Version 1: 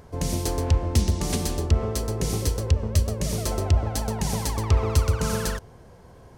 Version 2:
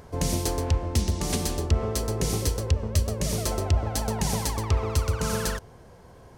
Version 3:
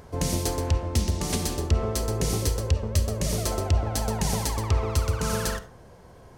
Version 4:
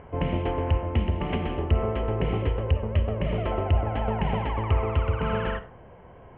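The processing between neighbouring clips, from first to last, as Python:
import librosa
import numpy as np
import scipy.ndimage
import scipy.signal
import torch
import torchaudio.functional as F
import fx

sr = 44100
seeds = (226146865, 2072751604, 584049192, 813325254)

y1 = fx.low_shelf(x, sr, hz=360.0, db=-2.5)
y1 = fx.rider(y1, sr, range_db=10, speed_s=0.5)
y2 = fx.rev_freeverb(y1, sr, rt60_s=0.42, hf_ratio=0.5, predelay_ms=10, drr_db=11.5)
y3 = scipy.signal.sosfilt(scipy.signal.cheby1(6, 3, 3100.0, 'lowpass', fs=sr, output='sos'), y2)
y3 = y3 * librosa.db_to_amplitude(3.0)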